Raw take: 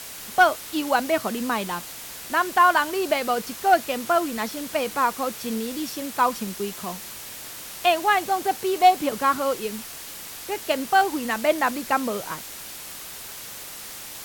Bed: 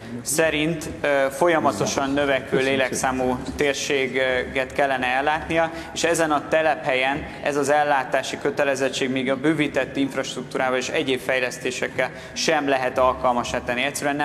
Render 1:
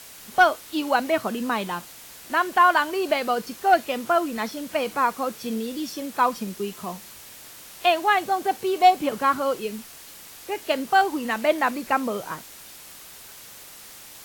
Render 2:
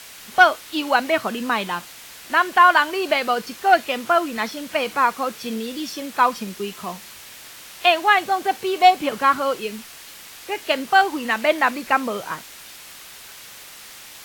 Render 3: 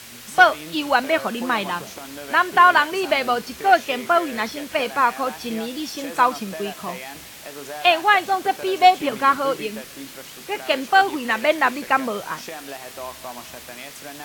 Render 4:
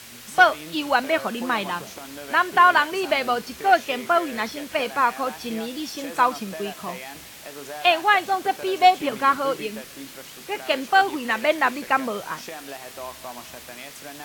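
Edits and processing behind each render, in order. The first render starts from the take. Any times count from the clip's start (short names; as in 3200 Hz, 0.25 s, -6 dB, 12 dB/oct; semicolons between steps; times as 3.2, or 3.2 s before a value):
noise print and reduce 6 dB
bell 2400 Hz +6.5 dB 2.7 oct
add bed -15.5 dB
gain -2 dB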